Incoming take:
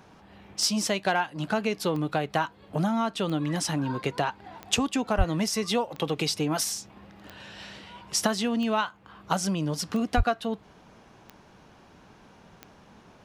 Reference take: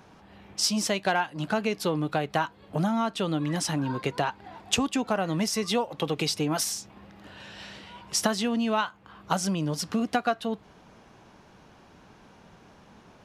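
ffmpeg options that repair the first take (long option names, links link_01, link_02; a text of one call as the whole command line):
ffmpeg -i in.wav -filter_complex "[0:a]adeclick=threshold=4,asplit=3[link_01][link_02][link_03];[link_01]afade=type=out:start_time=5.17:duration=0.02[link_04];[link_02]highpass=frequency=140:width=0.5412,highpass=frequency=140:width=1.3066,afade=type=in:start_time=5.17:duration=0.02,afade=type=out:start_time=5.29:duration=0.02[link_05];[link_03]afade=type=in:start_time=5.29:duration=0.02[link_06];[link_04][link_05][link_06]amix=inputs=3:normalize=0,asplit=3[link_07][link_08][link_09];[link_07]afade=type=out:start_time=10.16:duration=0.02[link_10];[link_08]highpass=frequency=140:width=0.5412,highpass=frequency=140:width=1.3066,afade=type=in:start_time=10.16:duration=0.02,afade=type=out:start_time=10.28:duration=0.02[link_11];[link_09]afade=type=in:start_time=10.28:duration=0.02[link_12];[link_10][link_11][link_12]amix=inputs=3:normalize=0" out.wav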